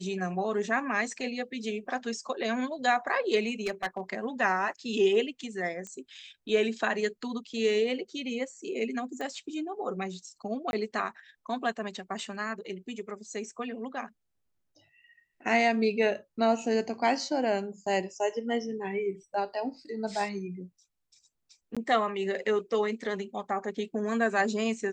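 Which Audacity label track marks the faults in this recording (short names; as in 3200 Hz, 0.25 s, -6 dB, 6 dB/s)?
3.660000	4.000000	clipped -25 dBFS
5.870000	5.870000	pop -27 dBFS
9.210000	9.210000	pop -25 dBFS
10.710000	10.730000	gap 21 ms
21.750000	21.770000	gap 16 ms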